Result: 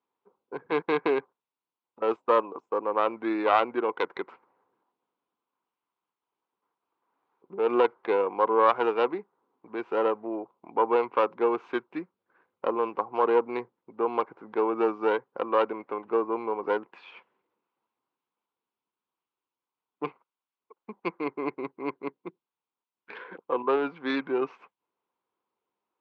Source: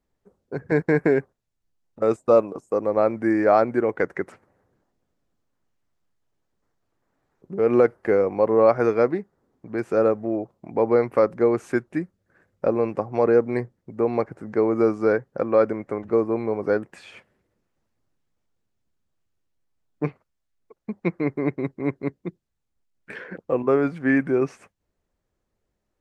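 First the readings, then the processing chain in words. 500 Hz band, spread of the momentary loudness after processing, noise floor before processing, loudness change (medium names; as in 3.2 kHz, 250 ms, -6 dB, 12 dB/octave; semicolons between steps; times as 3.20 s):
-6.5 dB, 15 LU, -78 dBFS, -5.5 dB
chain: tracing distortion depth 0.18 ms; cabinet simulation 430–3400 Hz, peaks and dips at 610 Hz -10 dB, 990 Hz +9 dB, 1.8 kHz -10 dB; trim -1 dB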